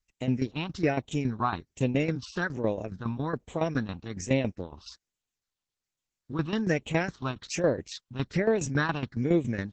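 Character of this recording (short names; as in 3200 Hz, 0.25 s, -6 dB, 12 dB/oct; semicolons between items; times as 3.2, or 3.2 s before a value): phasing stages 6, 1.2 Hz, lowest notch 510–1400 Hz; tremolo saw down 7.2 Hz, depth 75%; Opus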